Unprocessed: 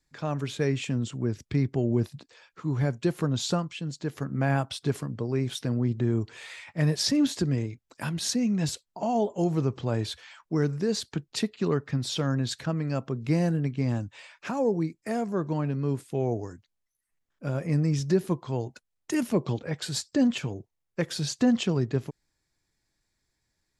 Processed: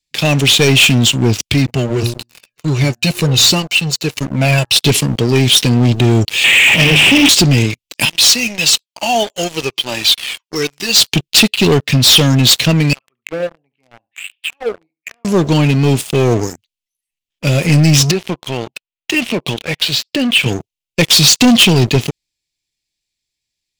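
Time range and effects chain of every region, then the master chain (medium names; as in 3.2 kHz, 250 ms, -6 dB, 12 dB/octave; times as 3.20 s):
1.54–4.76 s: Butterworth band-stop 3.3 kHz, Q 7.8 + de-hum 118.6 Hz, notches 15 + Shepard-style flanger falling 1.5 Hz
6.44–7.29 s: one-bit delta coder 16 kbps, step -27 dBFS + high-pass 79 Hz + hum notches 50/100/150/200/250/300/350 Hz
8.05–10.96 s: frequency weighting A + Shepard-style flanger falling 1.1 Hz
12.93–15.25 s: auto-wah 540–3800 Hz, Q 6.9, down, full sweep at -20.5 dBFS + distance through air 230 m + feedback delay 71 ms, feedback 22%, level -16.5 dB
18.11–20.46 s: bass shelf 480 Hz -8.5 dB + compression 3:1, threshold -31 dBFS + low-pass 2.5 kHz
whole clip: resonant high shelf 2 kHz +11 dB, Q 3; waveshaping leveller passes 5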